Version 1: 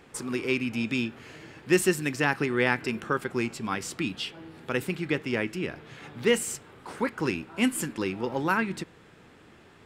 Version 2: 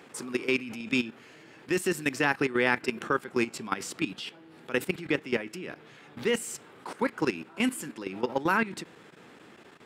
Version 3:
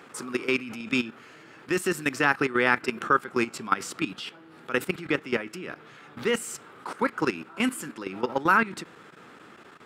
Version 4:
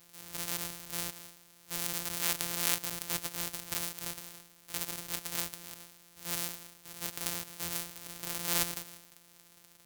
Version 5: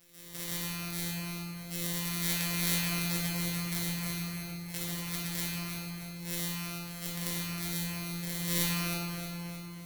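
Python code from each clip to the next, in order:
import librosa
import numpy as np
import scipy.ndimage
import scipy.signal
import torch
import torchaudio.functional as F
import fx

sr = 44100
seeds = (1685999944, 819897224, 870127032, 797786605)

y1 = scipy.signal.sosfilt(scipy.signal.butter(2, 180.0, 'highpass', fs=sr, output='sos'), x)
y1 = fx.level_steps(y1, sr, step_db=14)
y1 = y1 * librosa.db_to_amplitude(4.0)
y2 = fx.peak_eq(y1, sr, hz=1300.0, db=8.0, octaves=0.52)
y2 = y2 * librosa.db_to_amplitude(1.0)
y3 = np.r_[np.sort(y2[:len(y2) // 256 * 256].reshape(-1, 256), axis=1).ravel(), y2[len(y2) // 256 * 256:]]
y3 = fx.transient(y3, sr, attack_db=-5, sustain_db=11)
y3 = F.preemphasis(torch.from_numpy(y3), 0.9).numpy()
y4 = fx.echo_feedback(y3, sr, ms=313, feedback_pct=51, wet_db=-9.0)
y4 = fx.room_shoebox(y4, sr, seeds[0], volume_m3=170.0, walls='hard', distance_m=1.0)
y4 = y4 * librosa.db_to_amplitude(-4.5)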